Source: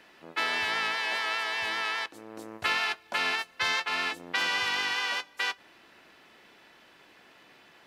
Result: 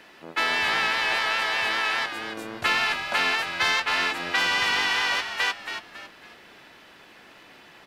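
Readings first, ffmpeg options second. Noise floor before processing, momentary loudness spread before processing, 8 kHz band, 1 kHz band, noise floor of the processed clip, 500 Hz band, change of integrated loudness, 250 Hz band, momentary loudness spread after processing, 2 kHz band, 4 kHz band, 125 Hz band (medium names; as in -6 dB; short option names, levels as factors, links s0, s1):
-58 dBFS, 6 LU, +5.5 dB, +5.5 dB, -51 dBFS, +6.0 dB, +5.0 dB, +6.5 dB, 12 LU, +5.5 dB, +5.0 dB, +8.0 dB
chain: -filter_complex "[0:a]asplit=2[s0][s1];[s1]asoftclip=type=tanh:threshold=0.0447,volume=0.398[s2];[s0][s2]amix=inputs=2:normalize=0,asplit=5[s3][s4][s5][s6][s7];[s4]adelay=276,afreqshift=-93,volume=0.376[s8];[s5]adelay=552,afreqshift=-186,volume=0.135[s9];[s6]adelay=828,afreqshift=-279,volume=0.049[s10];[s7]adelay=1104,afreqshift=-372,volume=0.0176[s11];[s3][s8][s9][s10][s11]amix=inputs=5:normalize=0,volume=1.41"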